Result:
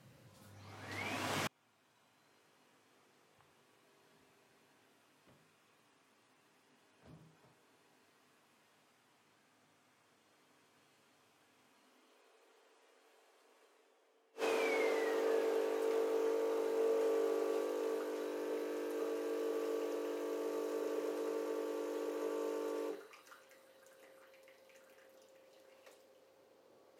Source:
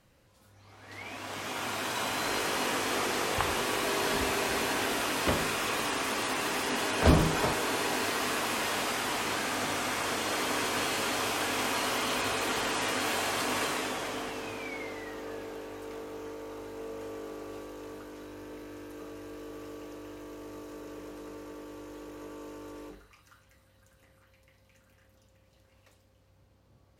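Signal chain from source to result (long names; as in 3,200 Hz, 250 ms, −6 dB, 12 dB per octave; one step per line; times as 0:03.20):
gate with flip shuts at −27 dBFS, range −40 dB
high-pass filter sweep 130 Hz → 420 Hz, 0:11.63–0:12.20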